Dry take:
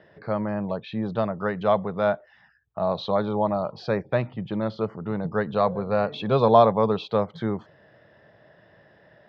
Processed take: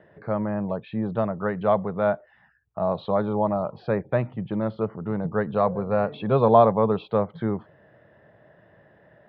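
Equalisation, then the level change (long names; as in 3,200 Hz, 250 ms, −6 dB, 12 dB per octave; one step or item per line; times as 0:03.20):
high-frequency loss of the air 420 metres
+1.5 dB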